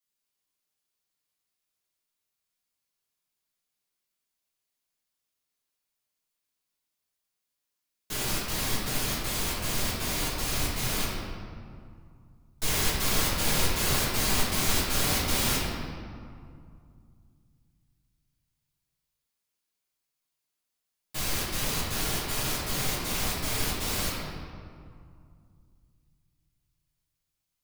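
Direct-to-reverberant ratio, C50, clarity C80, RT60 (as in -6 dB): -9.0 dB, -1.0 dB, 1.0 dB, 2.3 s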